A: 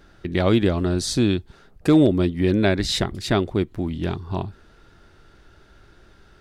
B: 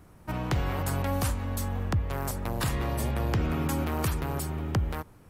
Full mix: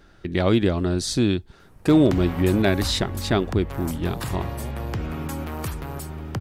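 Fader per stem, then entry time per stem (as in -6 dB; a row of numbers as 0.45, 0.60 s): -1.0, -1.5 dB; 0.00, 1.60 s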